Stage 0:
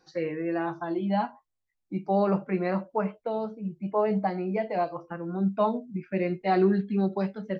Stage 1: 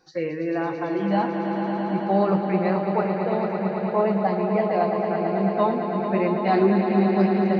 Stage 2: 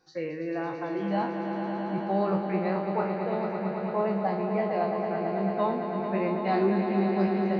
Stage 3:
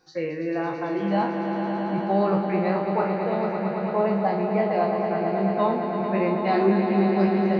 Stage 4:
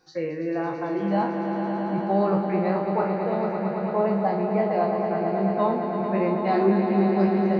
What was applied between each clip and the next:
swelling echo 0.111 s, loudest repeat 5, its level -9 dB; gain +3 dB
spectral trails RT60 0.37 s; gain -6.5 dB
de-hum 62.01 Hz, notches 32; gain +5 dB
dynamic EQ 3000 Hz, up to -5 dB, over -46 dBFS, Q 0.9

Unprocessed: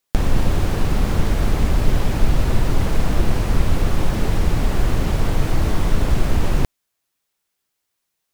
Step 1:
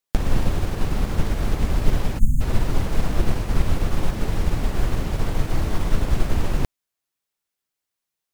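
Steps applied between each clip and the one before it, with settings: spectral delete 2.19–2.41, 270–6300 Hz; upward expander 1.5:1, over -23 dBFS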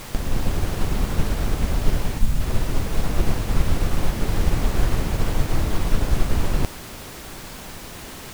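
AGC; added noise pink -32 dBFS; gain -4.5 dB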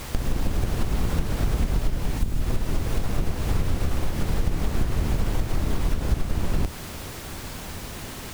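octaver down 1 oct, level +1 dB; compressor, threshold -18 dBFS, peak gain reduction 10.5 dB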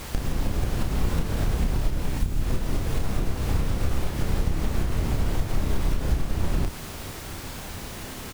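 doubler 31 ms -6 dB; gain -1.5 dB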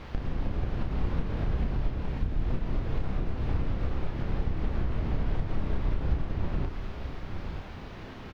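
air absorption 280 m; echo 0.924 s -9 dB; gain -4.5 dB

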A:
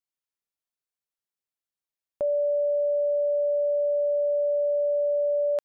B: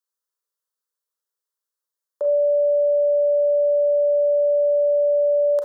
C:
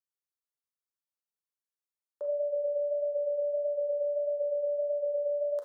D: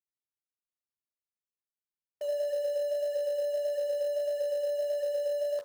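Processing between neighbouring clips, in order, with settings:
steep high-pass 310 Hz 48 dB/oct; fixed phaser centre 480 Hz, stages 8; Schroeder reverb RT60 0.36 s, combs from 30 ms, DRR 5 dB; gain +5.5 dB
flange 1.6 Hz, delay 9.3 ms, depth 4.8 ms, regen -70%; gain -8 dB
low-pass opened by the level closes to 400 Hz; in parallel at -8.5 dB: bit-crush 6-bit; on the sum: gain -3 dB

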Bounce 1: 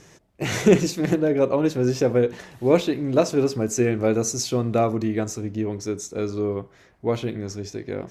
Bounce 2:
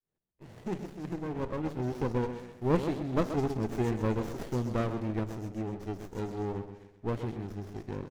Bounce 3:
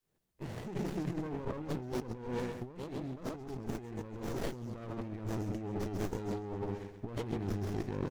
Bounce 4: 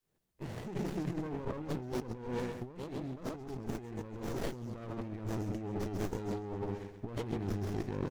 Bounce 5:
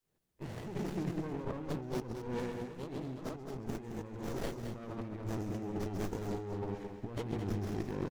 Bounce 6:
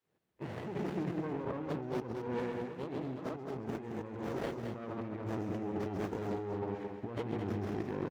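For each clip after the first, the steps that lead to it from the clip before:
opening faded in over 2.53 s; feedback echo 0.13 s, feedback 40%, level -9.5 dB; running maximum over 33 samples; gain -9 dB
negative-ratio compressor -41 dBFS, ratio -1; gain +1.5 dB
nothing audible
echo 0.216 s -8 dB; gain -1 dB
HPF 80 Hz; tone controls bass -4 dB, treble -12 dB; in parallel at -2 dB: limiter -33.5 dBFS, peak gain reduction 9 dB; on the sum: gain -1 dB

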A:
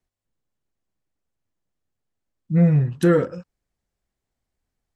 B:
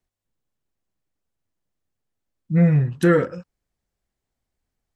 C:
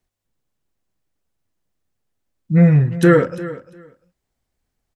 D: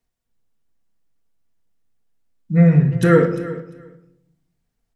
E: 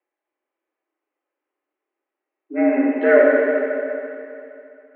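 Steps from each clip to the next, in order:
dynamic EQ 1900 Hz, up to +6 dB, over -42 dBFS, Q 1.4
feedback echo 0.348 s, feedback 16%, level -16 dB; gain +4.5 dB
shoebox room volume 1900 m³, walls furnished, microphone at 1.7 m; gain -3 dB
Schroeder reverb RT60 2.7 s, combs from 31 ms, DRR -2 dB; mistuned SSB +110 Hz 220–2500 Hz

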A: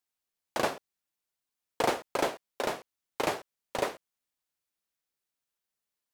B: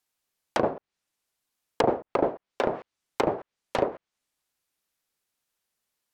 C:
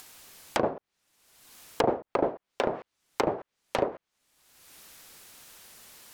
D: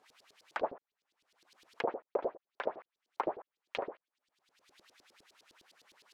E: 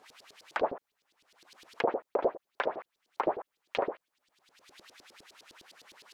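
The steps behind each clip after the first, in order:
treble ducked by the level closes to 670 Hz, closed at -27 dBFS; gain +7 dB
upward compressor, threshold -24 dBFS; gain -2 dB
LFO band-pass saw up 9.8 Hz 320–4900 Hz; gain -1.5 dB
limiter -25.5 dBFS, peak gain reduction 6.5 dB; gain +8.5 dB

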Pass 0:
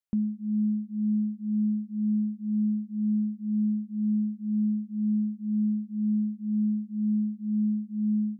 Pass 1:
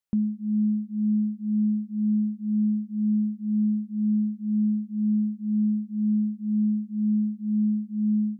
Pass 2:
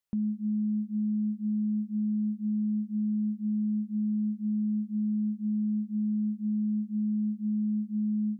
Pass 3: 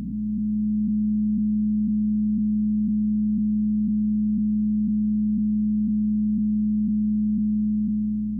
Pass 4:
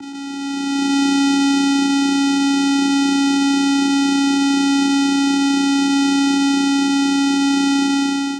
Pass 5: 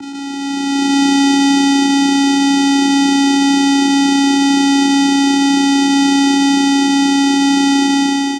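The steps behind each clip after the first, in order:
dynamic EQ 110 Hz, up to +3 dB, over -51 dBFS, Q 5.3; gain +2.5 dB
limiter -25 dBFS, peak gain reduction 6.5 dB
time blur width 1.01 s; hum 60 Hz, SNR 17 dB; gain +7.5 dB
spectral contrast lowered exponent 0.16; AGC gain up to 11.5 dB; vocoder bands 4, square 278 Hz; gain +3 dB
echo 0.186 s -7 dB; gain +4 dB

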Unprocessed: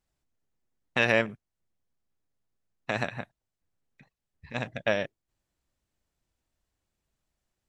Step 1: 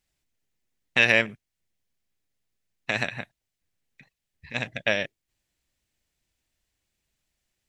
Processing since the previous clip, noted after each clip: resonant high shelf 1600 Hz +6 dB, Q 1.5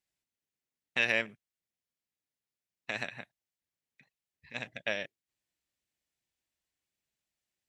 HPF 170 Hz 6 dB/oct; gain -9 dB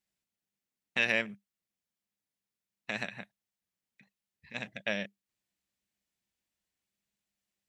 bell 200 Hz +12 dB 0.22 oct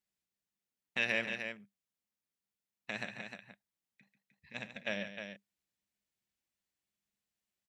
tapped delay 50/141/306 ms -17.5/-11/-7.5 dB; gain -4.5 dB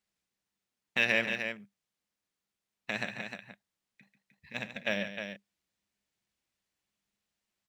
median filter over 3 samples; gain +5.5 dB

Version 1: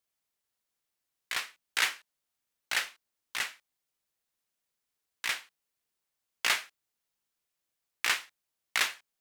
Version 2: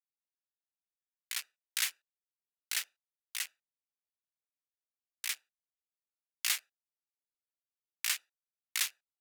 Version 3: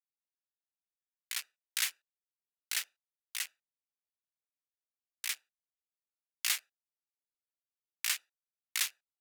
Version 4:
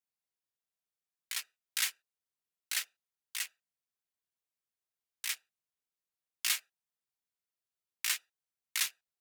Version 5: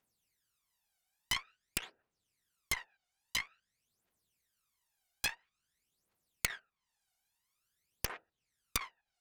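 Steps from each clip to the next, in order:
Wiener smoothing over 41 samples; differentiator; in parallel at -3 dB: limiter -27.5 dBFS, peak gain reduction 10 dB
nothing audible
notch comb 290 Hz; gain +1.5 dB
treble ducked by the level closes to 650 Hz, closed at -32.5 dBFS; phaser 0.49 Hz, delay 1.4 ms, feedback 76%; added harmonics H 6 -14 dB, 7 -7 dB, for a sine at -15 dBFS; gain +1 dB

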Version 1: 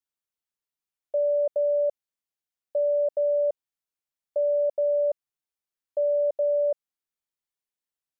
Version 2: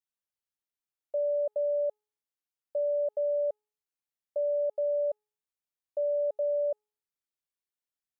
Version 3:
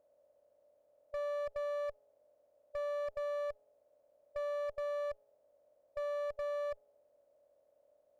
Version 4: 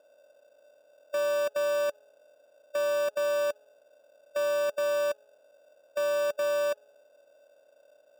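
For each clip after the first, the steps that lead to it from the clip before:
de-hum 422.4 Hz, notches 30; gain -5 dB
per-bin compression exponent 0.4; one-sided clip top -34.5 dBFS, bottom -25.5 dBFS; gain -6 dB
BPF 290–4400 Hz; in parallel at -4 dB: sample-and-hold 21×; on the sum: gain +7 dB

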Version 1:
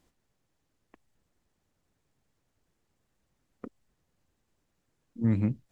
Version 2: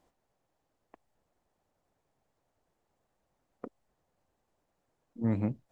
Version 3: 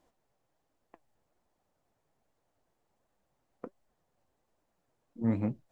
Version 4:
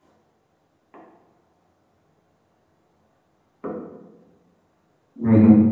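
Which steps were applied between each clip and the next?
bell 710 Hz +12 dB 1.6 oct; gain -5.5 dB
flange 1.3 Hz, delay 2.8 ms, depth 6.4 ms, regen +68%; gain +4 dB
reverb RT60 1.1 s, pre-delay 3 ms, DRR -7 dB; gain -1 dB

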